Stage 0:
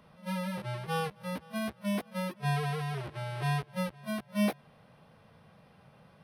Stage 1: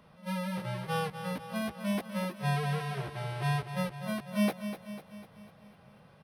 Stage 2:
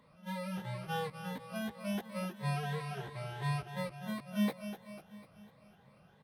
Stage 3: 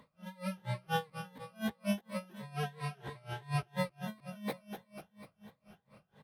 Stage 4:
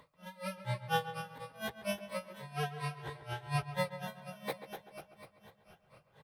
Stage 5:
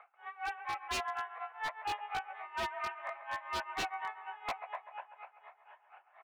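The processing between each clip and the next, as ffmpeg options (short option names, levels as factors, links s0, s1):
-af "aecho=1:1:248|496|744|992|1240|1488:0.316|0.171|0.0922|0.0498|0.0269|0.0145"
-af "afftfilt=real='re*pow(10,9/40*sin(2*PI*(1*log(max(b,1)*sr/1024/100)/log(2)-(2.9)*(pts-256)/sr)))':imag='im*pow(10,9/40*sin(2*PI*(1*log(max(b,1)*sr/1024/100)/log(2)-(2.9)*(pts-256)/sr)))':win_size=1024:overlap=0.75,volume=0.501"
-af "aeval=exprs='val(0)*pow(10,-27*(0.5-0.5*cos(2*PI*4.2*n/s))/20)':c=same,volume=2"
-filter_complex "[0:a]equalizer=f=220:w=2.6:g=-13.5,asplit=2[s0][s1];[s1]adelay=137,lowpass=f=2600:p=1,volume=0.266,asplit=2[s2][s3];[s3]adelay=137,lowpass=f=2600:p=1,volume=0.43,asplit=2[s4][s5];[s5]adelay=137,lowpass=f=2600:p=1,volume=0.43,asplit=2[s6][s7];[s7]adelay=137,lowpass=f=2600:p=1,volume=0.43[s8];[s2][s4][s6][s8]amix=inputs=4:normalize=0[s9];[s0][s9]amix=inputs=2:normalize=0,volume=1.26"
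-af "highpass=f=370:t=q:w=0.5412,highpass=f=370:t=q:w=1.307,lowpass=f=2300:t=q:w=0.5176,lowpass=f=2300:t=q:w=0.7071,lowpass=f=2300:t=q:w=1.932,afreqshift=220,aeval=exprs='0.0188*(abs(mod(val(0)/0.0188+3,4)-2)-1)':c=same,volume=1.78"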